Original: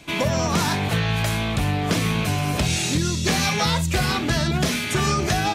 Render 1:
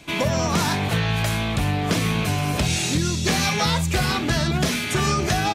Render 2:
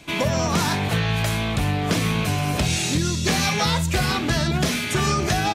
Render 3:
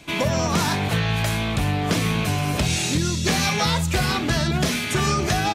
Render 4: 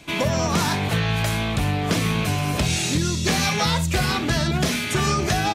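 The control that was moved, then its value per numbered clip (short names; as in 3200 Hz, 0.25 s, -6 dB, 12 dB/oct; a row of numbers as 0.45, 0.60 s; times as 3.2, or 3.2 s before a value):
speakerphone echo, time: 340, 130, 210, 80 ms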